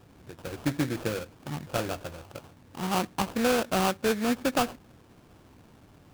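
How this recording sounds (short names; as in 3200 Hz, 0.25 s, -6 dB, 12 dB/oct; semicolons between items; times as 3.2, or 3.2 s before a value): aliases and images of a low sample rate 2000 Hz, jitter 20%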